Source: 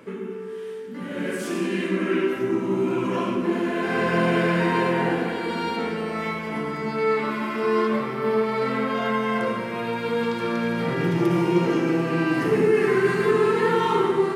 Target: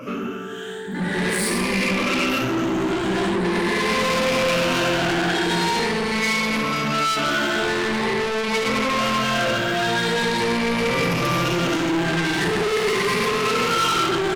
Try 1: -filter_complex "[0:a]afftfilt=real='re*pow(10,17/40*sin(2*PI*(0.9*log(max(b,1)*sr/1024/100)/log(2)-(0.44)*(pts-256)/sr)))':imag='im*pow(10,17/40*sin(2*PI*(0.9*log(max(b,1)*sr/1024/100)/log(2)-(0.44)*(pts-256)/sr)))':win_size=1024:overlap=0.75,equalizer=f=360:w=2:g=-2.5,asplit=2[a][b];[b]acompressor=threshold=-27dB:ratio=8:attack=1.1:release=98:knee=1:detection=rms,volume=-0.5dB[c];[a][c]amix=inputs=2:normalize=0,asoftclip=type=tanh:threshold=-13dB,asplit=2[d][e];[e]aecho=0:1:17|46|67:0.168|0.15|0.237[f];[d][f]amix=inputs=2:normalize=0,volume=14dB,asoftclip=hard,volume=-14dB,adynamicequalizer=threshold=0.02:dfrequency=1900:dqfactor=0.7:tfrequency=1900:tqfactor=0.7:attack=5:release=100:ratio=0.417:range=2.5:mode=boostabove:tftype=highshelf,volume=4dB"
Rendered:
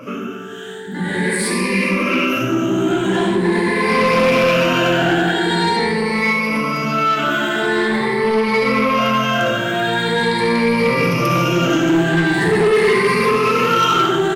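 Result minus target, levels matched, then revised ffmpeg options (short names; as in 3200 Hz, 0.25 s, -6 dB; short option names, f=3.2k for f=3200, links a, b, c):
soft clip: distortion -9 dB; compressor: peak gain reduction +6 dB
-filter_complex "[0:a]afftfilt=real='re*pow(10,17/40*sin(2*PI*(0.9*log(max(b,1)*sr/1024/100)/log(2)-(0.44)*(pts-256)/sr)))':imag='im*pow(10,17/40*sin(2*PI*(0.9*log(max(b,1)*sr/1024/100)/log(2)-(0.44)*(pts-256)/sr)))':win_size=1024:overlap=0.75,equalizer=f=360:w=2:g=-2.5,asplit=2[a][b];[b]acompressor=threshold=-20dB:ratio=8:attack=1.1:release=98:knee=1:detection=rms,volume=-0.5dB[c];[a][c]amix=inputs=2:normalize=0,asoftclip=type=tanh:threshold=-24.5dB,asplit=2[d][e];[e]aecho=0:1:17|46|67:0.168|0.15|0.237[f];[d][f]amix=inputs=2:normalize=0,volume=14dB,asoftclip=hard,volume=-14dB,adynamicequalizer=threshold=0.02:dfrequency=1900:dqfactor=0.7:tfrequency=1900:tqfactor=0.7:attack=5:release=100:ratio=0.417:range=2.5:mode=boostabove:tftype=highshelf,volume=4dB"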